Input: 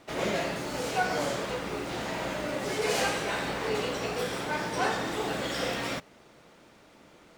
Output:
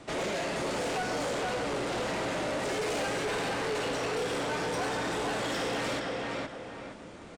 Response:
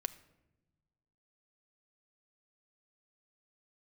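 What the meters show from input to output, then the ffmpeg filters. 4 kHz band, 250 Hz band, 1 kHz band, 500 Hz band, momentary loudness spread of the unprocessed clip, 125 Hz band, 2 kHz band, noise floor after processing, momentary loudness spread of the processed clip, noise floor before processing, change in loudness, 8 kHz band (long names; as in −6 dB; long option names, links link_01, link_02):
−1.0 dB, 0.0 dB, −1.0 dB, 0.0 dB, 5 LU, −1.0 dB, −1.5 dB, −46 dBFS, 5 LU, −57 dBFS, −1.0 dB, −1.0 dB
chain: -filter_complex "[0:a]equalizer=frequency=8200:width=2.6:gain=3,acrossover=split=290|3900[link_01][link_02][link_03];[link_01]acompressor=threshold=-50dB:ratio=4[link_04];[link_02]acompressor=threshold=-31dB:ratio=4[link_05];[link_03]acompressor=threshold=-43dB:ratio=4[link_06];[link_04][link_05][link_06]amix=inputs=3:normalize=0,lowshelf=frequency=360:gain=5.5,aresample=22050,aresample=44100,asplit=2[link_07][link_08];[link_08]adelay=467,lowpass=frequency=2900:poles=1,volume=-3dB,asplit=2[link_09][link_10];[link_10]adelay=467,lowpass=frequency=2900:poles=1,volume=0.33,asplit=2[link_11][link_12];[link_12]adelay=467,lowpass=frequency=2900:poles=1,volume=0.33,asplit=2[link_13][link_14];[link_14]adelay=467,lowpass=frequency=2900:poles=1,volume=0.33[link_15];[link_07][link_09][link_11][link_13][link_15]amix=inputs=5:normalize=0,asoftclip=type=tanh:threshold=-32dB,volume=4dB"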